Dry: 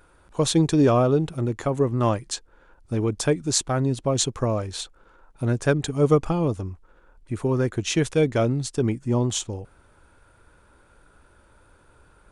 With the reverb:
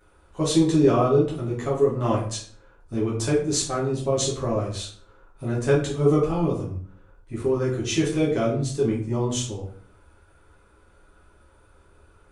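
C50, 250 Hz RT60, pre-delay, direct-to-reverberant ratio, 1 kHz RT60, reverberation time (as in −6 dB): 6.0 dB, 0.65 s, 7 ms, −6.5 dB, 0.45 s, 0.50 s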